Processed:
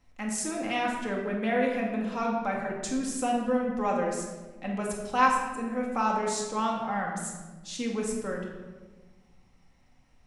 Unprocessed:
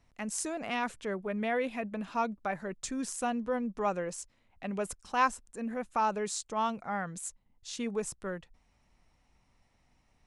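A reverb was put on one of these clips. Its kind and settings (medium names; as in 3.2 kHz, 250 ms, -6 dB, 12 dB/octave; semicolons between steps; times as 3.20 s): simulated room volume 980 m³, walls mixed, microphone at 2.1 m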